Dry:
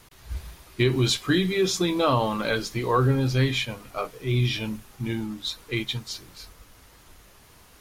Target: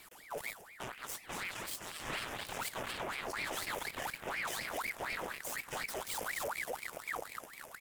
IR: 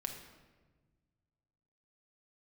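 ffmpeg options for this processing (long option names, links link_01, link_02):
-filter_complex "[0:a]areverse,acompressor=threshold=-35dB:ratio=16,areverse,asubboost=boost=7:cutoff=73,dynaudnorm=framelen=320:gausssize=9:maxgain=4dB,asoftclip=type=hard:threshold=-33.5dB,asplit=9[link_01][link_02][link_03][link_04][link_05][link_06][link_07][link_08][link_09];[link_02]adelay=236,afreqshift=65,volume=-12dB[link_10];[link_03]adelay=472,afreqshift=130,volume=-15.9dB[link_11];[link_04]adelay=708,afreqshift=195,volume=-19.8dB[link_12];[link_05]adelay=944,afreqshift=260,volume=-23.6dB[link_13];[link_06]adelay=1180,afreqshift=325,volume=-27.5dB[link_14];[link_07]adelay=1416,afreqshift=390,volume=-31.4dB[link_15];[link_08]adelay=1652,afreqshift=455,volume=-35.3dB[link_16];[link_09]adelay=1888,afreqshift=520,volume=-39.1dB[link_17];[link_01][link_10][link_11][link_12][link_13][link_14][link_15][link_16][link_17]amix=inputs=9:normalize=0,aphaser=in_gain=1:out_gain=1:delay=1.1:decay=0.36:speed=1.4:type=triangular,aeval=exprs='0.0562*(cos(1*acos(clip(val(0)/0.0562,-1,1)))-cos(1*PI/2))+0.0178*(cos(7*acos(clip(val(0)/0.0562,-1,1)))-cos(7*PI/2))':channel_layout=same,asuperstop=centerf=4000:order=4:qfactor=1.4,tiltshelf=frequency=1300:gain=-4,aeval=exprs='val(0)*sin(2*PI*1400*n/s+1400*0.65/4.1*sin(2*PI*4.1*n/s))':channel_layout=same,volume=-2dB"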